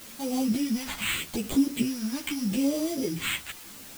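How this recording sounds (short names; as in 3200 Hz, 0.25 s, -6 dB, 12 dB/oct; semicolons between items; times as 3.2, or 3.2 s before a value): aliases and images of a low sample rate 5400 Hz, jitter 0%; phasing stages 2, 0.81 Hz, lowest notch 440–1700 Hz; a quantiser's noise floor 8-bit, dither triangular; a shimmering, thickened sound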